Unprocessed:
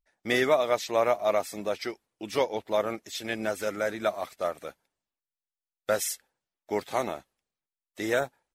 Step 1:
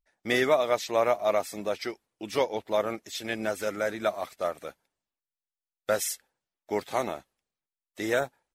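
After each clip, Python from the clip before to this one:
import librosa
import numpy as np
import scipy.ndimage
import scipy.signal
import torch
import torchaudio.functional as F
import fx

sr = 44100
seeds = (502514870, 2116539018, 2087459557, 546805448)

y = x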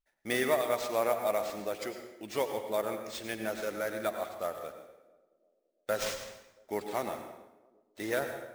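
y = fx.sample_hold(x, sr, seeds[0], rate_hz=12000.0, jitter_pct=0)
y = fx.echo_banded(y, sr, ms=339, feedback_pct=56, hz=370.0, wet_db=-24.0)
y = fx.rev_plate(y, sr, seeds[1], rt60_s=0.94, hf_ratio=0.8, predelay_ms=80, drr_db=6.5)
y = F.gain(torch.from_numpy(y), -5.5).numpy()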